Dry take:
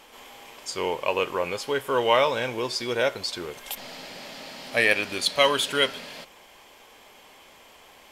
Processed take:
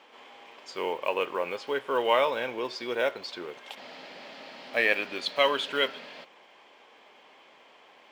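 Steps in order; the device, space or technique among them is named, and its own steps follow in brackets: early digital voice recorder (BPF 240–3500 Hz; block floating point 7-bit); gain -3 dB

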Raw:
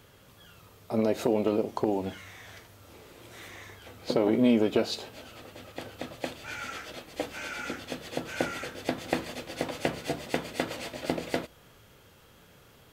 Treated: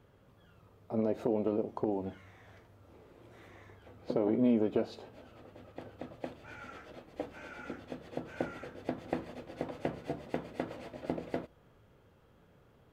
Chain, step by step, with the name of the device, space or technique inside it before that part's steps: through cloth (high shelf 2200 Hz -18 dB); gain -4.5 dB

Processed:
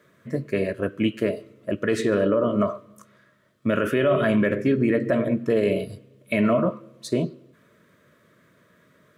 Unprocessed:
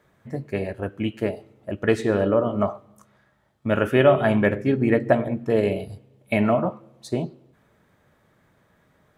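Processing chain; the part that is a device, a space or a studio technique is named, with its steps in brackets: PA system with an anti-feedback notch (HPF 140 Hz 12 dB/oct; Butterworth band-stop 810 Hz, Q 2.4; limiter -16.5 dBFS, peak gain reduction 11 dB); gain +4.5 dB

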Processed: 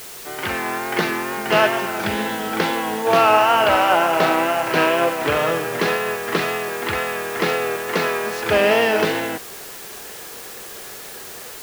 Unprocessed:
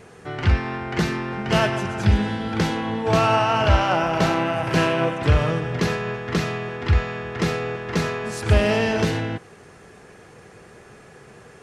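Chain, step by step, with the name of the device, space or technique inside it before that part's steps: dictaphone (BPF 360–4000 Hz; AGC gain up to 6.5 dB; wow and flutter; white noise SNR 16 dB)

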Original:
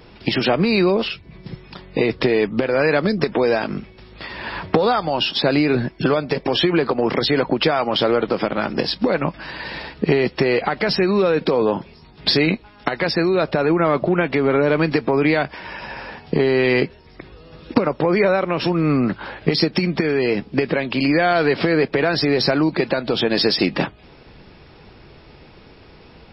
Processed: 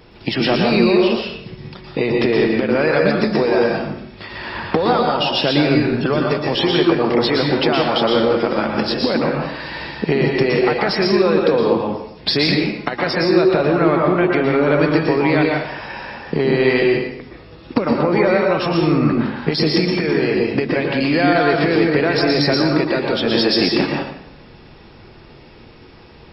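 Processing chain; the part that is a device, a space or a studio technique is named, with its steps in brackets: bathroom (reverb RT60 0.75 s, pre-delay 0.11 s, DRR -0.5 dB); gain -1 dB

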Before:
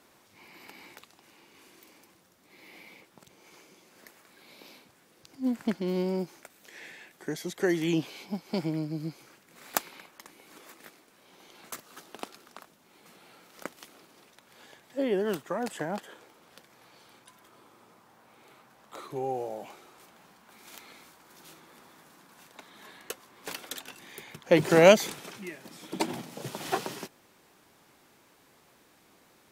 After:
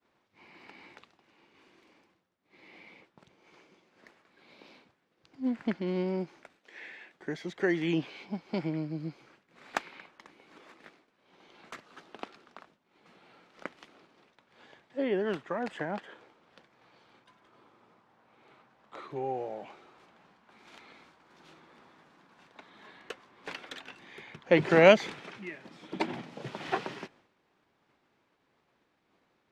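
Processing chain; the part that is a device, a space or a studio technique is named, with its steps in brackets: 6.59–7.14 HPF 230 Hz 12 dB/oct; hearing-loss simulation (LPF 3500 Hz 12 dB/oct; expander -55 dBFS); dynamic EQ 2000 Hz, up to +4 dB, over -51 dBFS, Q 1.3; gain -2 dB

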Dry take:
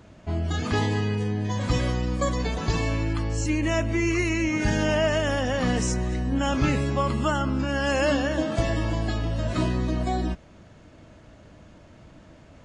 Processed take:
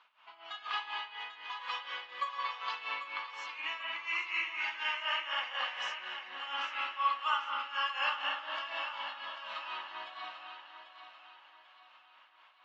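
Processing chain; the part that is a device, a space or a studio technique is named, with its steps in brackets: HPF 880 Hz 24 dB/oct; combo amplifier with spring reverb and tremolo (spring tank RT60 1.8 s, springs 54 ms, chirp 80 ms, DRR -1 dB; tremolo 4.1 Hz, depth 80%; speaker cabinet 97–3900 Hz, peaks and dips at 230 Hz +9 dB, 420 Hz -6 dB, 640 Hz -9 dB, 1100 Hz +4 dB, 1800 Hz -5 dB, 2900 Hz +5 dB); 7.11–7.99 high shelf 5200 Hz +5 dB; thinning echo 0.792 s, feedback 43%, high-pass 200 Hz, level -9.5 dB; gain -4 dB

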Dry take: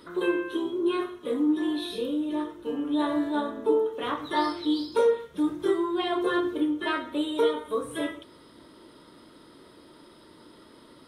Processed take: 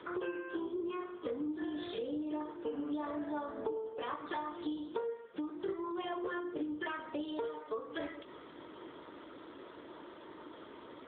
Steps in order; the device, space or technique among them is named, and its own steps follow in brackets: voicemail (BPF 350–3200 Hz; compressor 12:1, threshold -40 dBFS, peak gain reduction 21 dB; gain +5 dB; AMR-NB 7.95 kbps 8000 Hz)

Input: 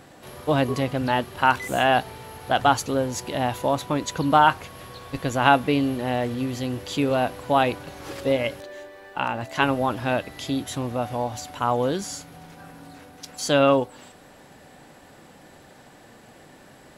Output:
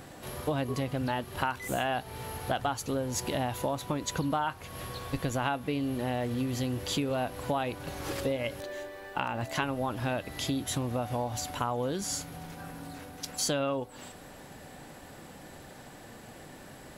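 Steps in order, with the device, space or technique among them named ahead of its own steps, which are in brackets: ASMR close-microphone chain (low shelf 110 Hz +6.5 dB; compressor 6:1, threshold -28 dBFS, peak gain reduction 16 dB; high shelf 10000 Hz +7 dB)

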